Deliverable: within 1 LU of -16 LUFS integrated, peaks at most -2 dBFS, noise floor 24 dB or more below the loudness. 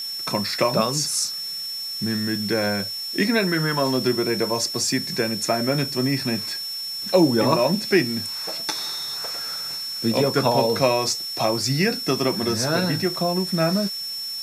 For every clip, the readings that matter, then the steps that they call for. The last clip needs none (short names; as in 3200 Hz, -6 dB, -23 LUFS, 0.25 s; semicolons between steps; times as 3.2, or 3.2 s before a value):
steady tone 5400 Hz; tone level -28 dBFS; noise floor -31 dBFS; noise floor target -47 dBFS; loudness -22.5 LUFS; peak -5.0 dBFS; loudness target -16.0 LUFS
-> notch 5400 Hz, Q 30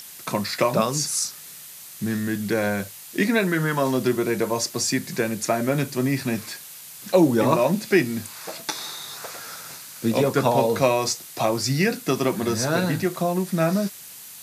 steady tone none; noise floor -42 dBFS; noise floor target -48 dBFS
-> denoiser 6 dB, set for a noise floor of -42 dBFS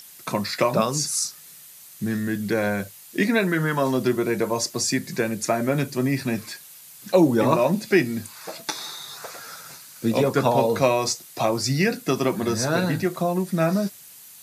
noise floor -46 dBFS; noise floor target -48 dBFS
-> denoiser 6 dB, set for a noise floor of -46 dBFS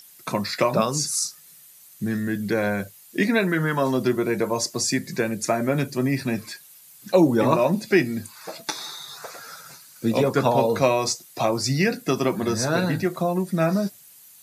noise floor -50 dBFS; loudness -23.5 LUFS; peak -5.0 dBFS; loudness target -16.0 LUFS
-> gain +7.5 dB; limiter -2 dBFS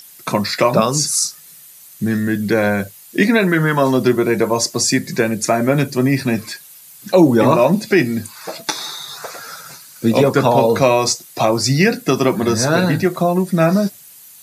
loudness -16.5 LUFS; peak -2.0 dBFS; noise floor -42 dBFS